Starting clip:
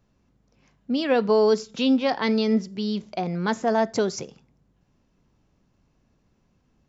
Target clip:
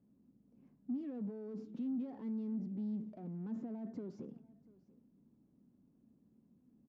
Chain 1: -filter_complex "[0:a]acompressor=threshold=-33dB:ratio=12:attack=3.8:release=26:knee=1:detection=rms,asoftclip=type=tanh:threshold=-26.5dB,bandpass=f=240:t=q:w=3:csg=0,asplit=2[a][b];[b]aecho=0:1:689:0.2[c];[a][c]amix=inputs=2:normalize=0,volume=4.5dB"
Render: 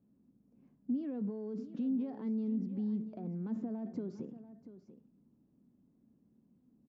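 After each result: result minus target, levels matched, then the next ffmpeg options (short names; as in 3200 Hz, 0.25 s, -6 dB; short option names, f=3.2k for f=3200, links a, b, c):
soft clip: distortion -14 dB; echo-to-direct +8 dB
-filter_complex "[0:a]acompressor=threshold=-33dB:ratio=12:attack=3.8:release=26:knee=1:detection=rms,asoftclip=type=tanh:threshold=-37.5dB,bandpass=f=240:t=q:w=3:csg=0,asplit=2[a][b];[b]aecho=0:1:689:0.2[c];[a][c]amix=inputs=2:normalize=0,volume=4.5dB"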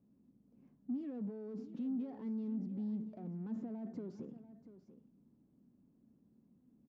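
echo-to-direct +8 dB
-filter_complex "[0:a]acompressor=threshold=-33dB:ratio=12:attack=3.8:release=26:knee=1:detection=rms,asoftclip=type=tanh:threshold=-37.5dB,bandpass=f=240:t=q:w=3:csg=0,asplit=2[a][b];[b]aecho=0:1:689:0.0794[c];[a][c]amix=inputs=2:normalize=0,volume=4.5dB"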